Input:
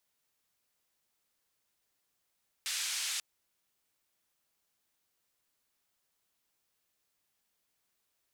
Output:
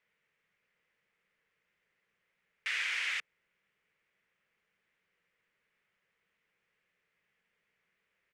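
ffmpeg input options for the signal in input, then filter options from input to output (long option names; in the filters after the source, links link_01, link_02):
-f lavfi -i "anoisesrc=color=white:duration=0.54:sample_rate=44100:seed=1,highpass=frequency=2100,lowpass=frequency=7600,volume=-24.7dB"
-af "firequalizer=gain_entry='entry(100,0);entry(180,9);entry(270,-3);entry(460,9);entry(710,-2);entry(2000,13);entry(4000,-8);entry(12000,-23)':delay=0.05:min_phase=1"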